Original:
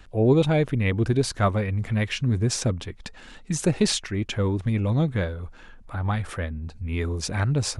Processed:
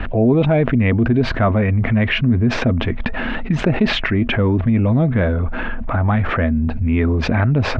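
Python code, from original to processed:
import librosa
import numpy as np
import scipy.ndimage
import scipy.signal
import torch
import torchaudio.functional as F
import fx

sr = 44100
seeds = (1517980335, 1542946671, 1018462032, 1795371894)

y = scipy.signal.sosfilt(scipy.signal.butter(4, 2600.0, 'lowpass', fs=sr, output='sos'), x)
y = fx.small_body(y, sr, hz=(240.0, 650.0), ring_ms=85, db=10)
y = fx.env_flatten(y, sr, amount_pct=70)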